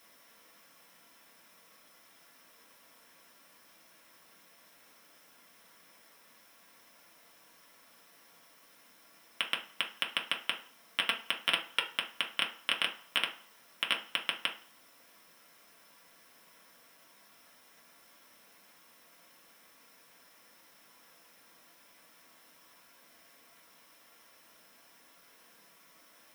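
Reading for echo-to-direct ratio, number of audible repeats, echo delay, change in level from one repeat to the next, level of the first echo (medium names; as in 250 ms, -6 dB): no echo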